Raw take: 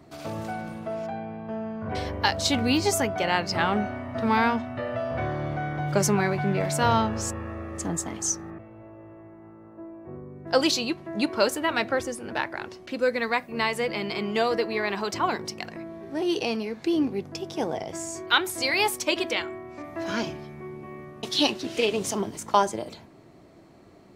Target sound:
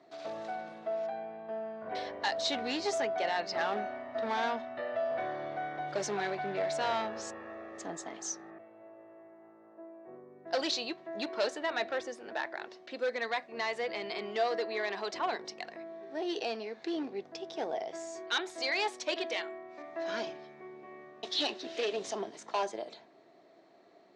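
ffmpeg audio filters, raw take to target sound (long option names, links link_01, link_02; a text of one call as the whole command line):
ffmpeg -i in.wav -af "volume=19.5dB,asoftclip=hard,volume=-19.5dB,highpass=320,equalizer=frequency=410:width_type=q:width=4:gain=3,equalizer=frequency=680:width_type=q:width=4:gain=8,equalizer=frequency=1800:width_type=q:width=4:gain=5,equalizer=frequency=3800:width_type=q:width=4:gain=6,lowpass=frequency=6600:width=0.5412,lowpass=frequency=6600:width=1.3066,volume=-9dB" out.wav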